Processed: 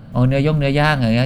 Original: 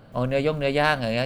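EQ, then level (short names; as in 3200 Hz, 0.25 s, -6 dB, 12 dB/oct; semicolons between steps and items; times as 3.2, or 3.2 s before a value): resonant low shelf 280 Hz +7.5 dB, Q 1.5; +4.5 dB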